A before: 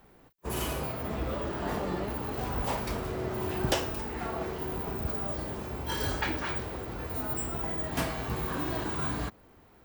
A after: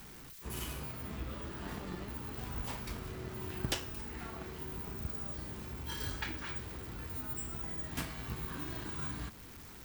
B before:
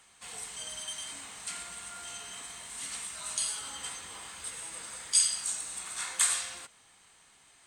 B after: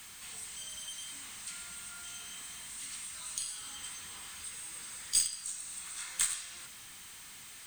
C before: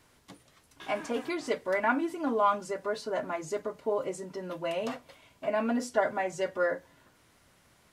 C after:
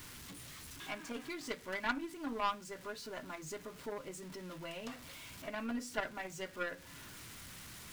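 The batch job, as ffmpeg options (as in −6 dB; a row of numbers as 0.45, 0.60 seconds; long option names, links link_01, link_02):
-filter_complex "[0:a]aeval=exprs='val(0)+0.5*0.0141*sgn(val(0))':channel_layout=same,aeval=exprs='0.299*(cos(1*acos(clip(val(0)/0.299,-1,1)))-cos(1*PI/2))+0.0299*(cos(2*acos(clip(val(0)/0.299,-1,1)))-cos(2*PI/2))+0.0119*(cos(3*acos(clip(val(0)/0.299,-1,1)))-cos(3*PI/2))+0.0237*(cos(7*acos(clip(val(0)/0.299,-1,1)))-cos(7*PI/2))':channel_layout=same,asplit=2[link_01][link_02];[link_02]acompressor=threshold=-42dB:ratio=6,volume=1dB[link_03];[link_01][link_03]amix=inputs=2:normalize=0,equalizer=frequency=610:width=0.85:gain=-10,volume=-4dB"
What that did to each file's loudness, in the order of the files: −7.5, −5.0, −11.0 LU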